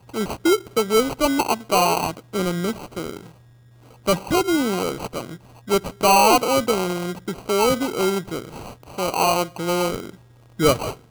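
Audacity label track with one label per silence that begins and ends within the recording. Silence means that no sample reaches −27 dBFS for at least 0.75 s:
3.170000	4.070000	silence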